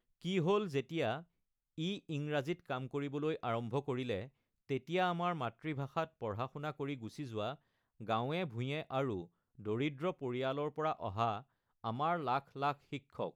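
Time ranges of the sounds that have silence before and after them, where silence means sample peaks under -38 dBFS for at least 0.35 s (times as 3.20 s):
1.78–4.25 s
4.70–7.52 s
8.02–9.21 s
9.66–11.38 s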